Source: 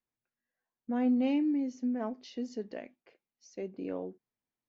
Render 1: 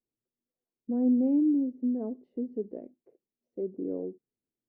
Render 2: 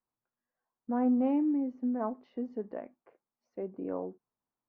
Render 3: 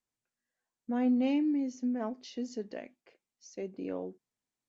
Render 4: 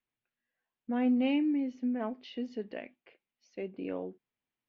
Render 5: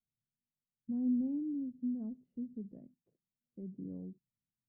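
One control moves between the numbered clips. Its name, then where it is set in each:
resonant low-pass, frequency: 400 Hz, 1.1 kHz, 7.8 kHz, 2.9 kHz, 160 Hz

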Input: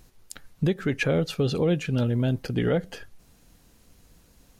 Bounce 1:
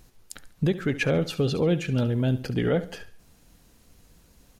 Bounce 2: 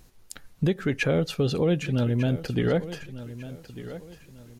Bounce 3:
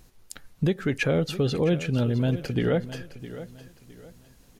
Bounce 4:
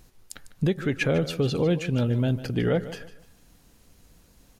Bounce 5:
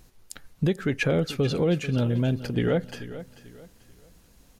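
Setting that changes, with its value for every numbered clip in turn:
feedback delay, time: 70 ms, 1198 ms, 661 ms, 150 ms, 439 ms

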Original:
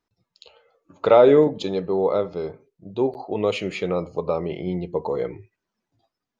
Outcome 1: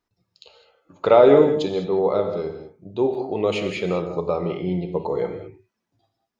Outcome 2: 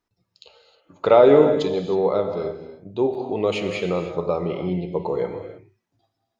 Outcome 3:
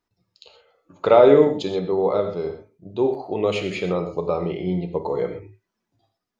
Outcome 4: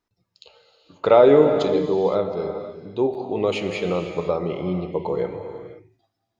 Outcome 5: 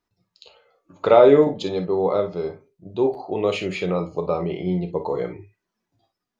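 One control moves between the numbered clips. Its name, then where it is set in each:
gated-style reverb, gate: 230 ms, 340 ms, 150 ms, 540 ms, 80 ms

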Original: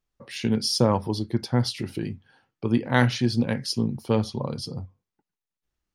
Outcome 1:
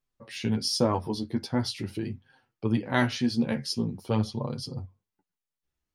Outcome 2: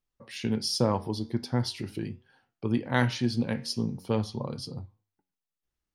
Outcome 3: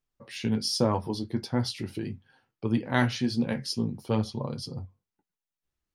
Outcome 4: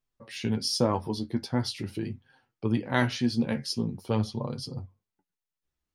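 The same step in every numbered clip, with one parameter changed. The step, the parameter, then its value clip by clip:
flange, regen: +6%, +86%, -39%, +34%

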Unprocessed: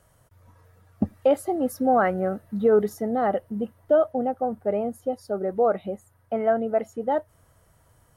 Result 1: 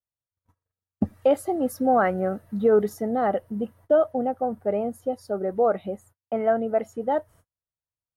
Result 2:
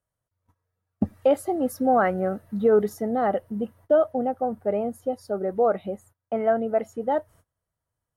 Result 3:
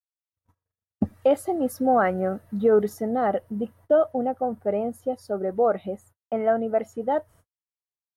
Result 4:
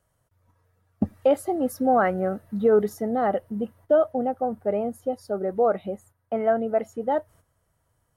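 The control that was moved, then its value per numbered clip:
gate, range: -41 dB, -25 dB, -57 dB, -11 dB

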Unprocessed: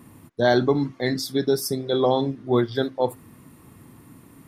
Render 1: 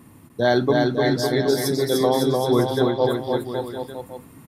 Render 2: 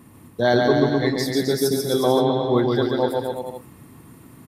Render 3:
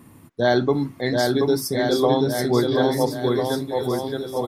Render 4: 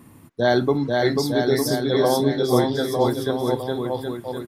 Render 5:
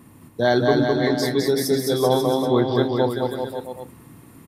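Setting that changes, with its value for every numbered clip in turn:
bouncing-ball echo, first gap: 300 ms, 140 ms, 730 ms, 490 ms, 210 ms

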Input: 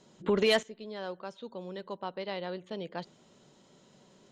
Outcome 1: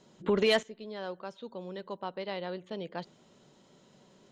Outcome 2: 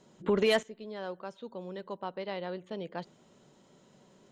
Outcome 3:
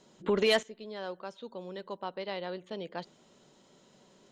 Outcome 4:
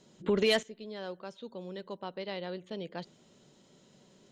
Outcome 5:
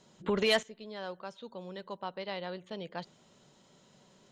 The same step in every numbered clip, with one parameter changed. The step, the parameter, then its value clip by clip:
peaking EQ, frequency: 14 kHz, 4.4 kHz, 120 Hz, 1 kHz, 330 Hz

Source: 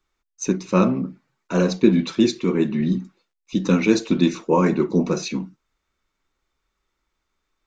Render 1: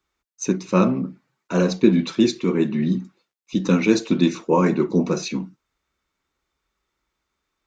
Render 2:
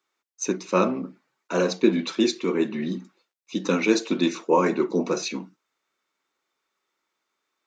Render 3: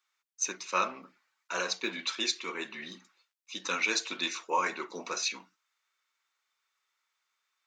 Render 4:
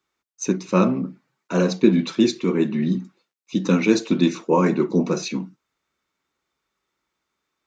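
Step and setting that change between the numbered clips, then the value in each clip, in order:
high-pass, cutoff frequency: 45 Hz, 320 Hz, 1.2 kHz, 120 Hz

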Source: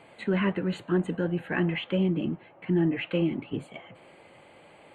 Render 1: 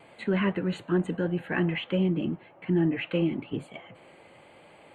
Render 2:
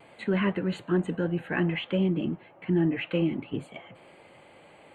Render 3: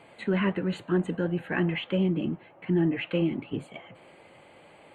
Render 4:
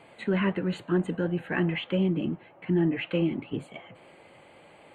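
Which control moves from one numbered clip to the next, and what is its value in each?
vibrato, rate: 0.92 Hz, 0.56 Hz, 12 Hz, 4 Hz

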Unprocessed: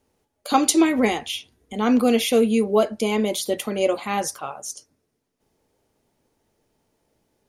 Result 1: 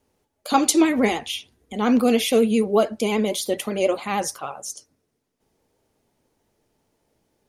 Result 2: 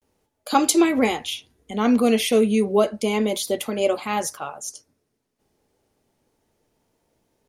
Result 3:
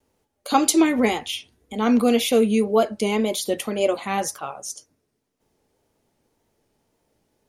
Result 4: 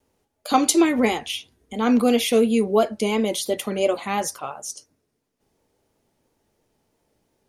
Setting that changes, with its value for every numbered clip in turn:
vibrato, rate: 13 Hz, 0.31 Hz, 1.9 Hz, 2.9 Hz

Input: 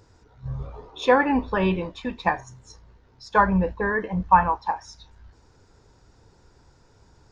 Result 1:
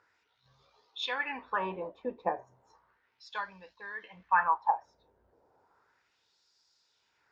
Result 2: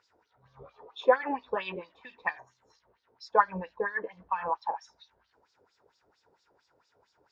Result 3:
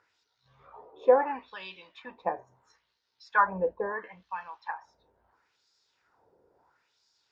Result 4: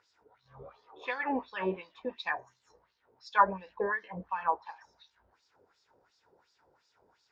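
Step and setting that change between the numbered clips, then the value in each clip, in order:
LFO band-pass, rate: 0.34 Hz, 4.4 Hz, 0.74 Hz, 2.8 Hz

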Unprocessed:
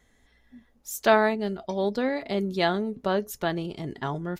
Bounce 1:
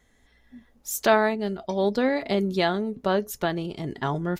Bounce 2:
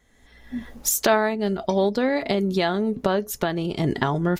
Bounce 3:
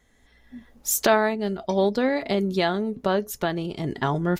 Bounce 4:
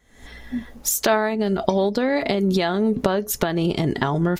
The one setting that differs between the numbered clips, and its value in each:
recorder AGC, rising by: 5.1 dB/s, 33 dB/s, 14 dB/s, 83 dB/s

